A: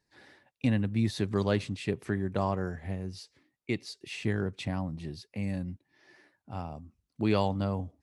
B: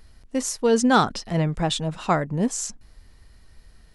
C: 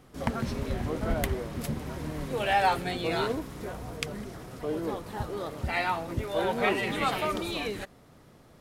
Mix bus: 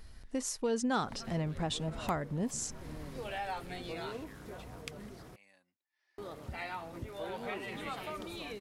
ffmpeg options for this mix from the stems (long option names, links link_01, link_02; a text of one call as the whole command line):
ffmpeg -i stem1.wav -i stem2.wav -i stem3.wav -filter_complex "[0:a]highpass=970,volume=-16.5dB[link_01];[1:a]volume=-1.5dB[link_02];[2:a]adelay=850,volume=-9dB,asplit=3[link_03][link_04][link_05];[link_03]atrim=end=5.36,asetpts=PTS-STARTPTS,afade=type=out:start_time=5.356:duration=0.004:curve=hsin[link_06];[link_04]atrim=start=5.36:end=6.18,asetpts=PTS-STARTPTS,volume=0[link_07];[link_05]atrim=start=6.18,asetpts=PTS-STARTPTS,afade=type=in:duration=0.004:curve=hsin[link_08];[link_06][link_07][link_08]concat=n=3:v=0:a=1[link_09];[link_01][link_02][link_09]amix=inputs=3:normalize=0,acompressor=threshold=-39dB:ratio=2" out.wav